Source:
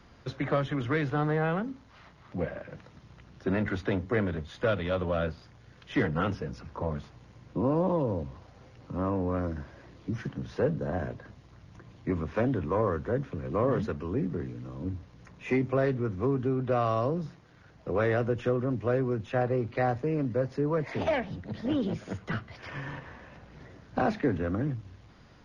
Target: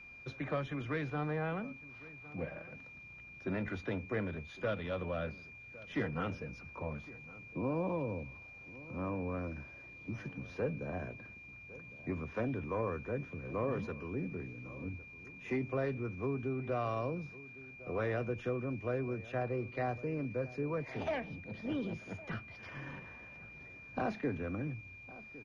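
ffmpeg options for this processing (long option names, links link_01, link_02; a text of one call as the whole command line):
ffmpeg -i in.wav -filter_complex "[0:a]asplit=2[link_01][link_02];[link_02]adelay=1108,volume=-18dB,highshelf=frequency=4000:gain=-24.9[link_03];[link_01][link_03]amix=inputs=2:normalize=0,aeval=exprs='val(0)+0.00794*sin(2*PI*2400*n/s)':channel_layout=same,volume=-8.5dB" out.wav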